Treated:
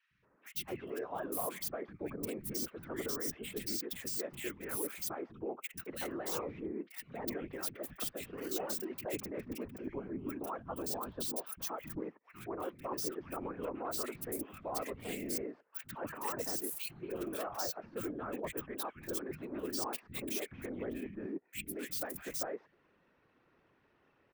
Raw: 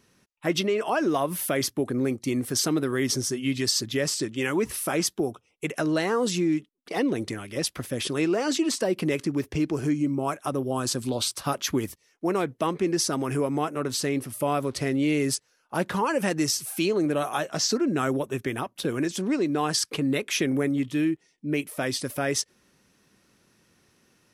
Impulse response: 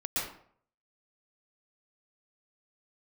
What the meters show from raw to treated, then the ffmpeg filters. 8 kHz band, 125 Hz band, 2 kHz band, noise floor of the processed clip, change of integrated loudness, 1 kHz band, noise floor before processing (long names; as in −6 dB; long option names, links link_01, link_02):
−13.0 dB, −19.0 dB, −15.0 dB, −72 dBFS, −13.0 dB, −13.0 dB, −68 dBFS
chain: -filter_complex "[0:a]acrossover=split=420|2300[link_01][link_02][link_03];[link_03]acrusher=bits=4:mix=0:aa=0.5[link_04];[link_01][link_02][link_04]amix=inputs=3:normalize=0,deesser=0.6,aemphasis=mode=production:type=bsi,afftfilt=real='hypot(re,im)*cos(2*PI*random(0))':imag='hypot(re,im)*sin(2*PI*random(1))':win_size=512:overlap=0.75,areverse,acompressor=threshold=-42dB:ratio=4,areverse,acrossover=split=200|1700[link_05][link_06][link_07];[link_05]adelay=110[link_08];[link_06]adelay=230[link_09];[link_08][link_09][link_07]amix=inputs=3:normalize=0,volume=4.5dB"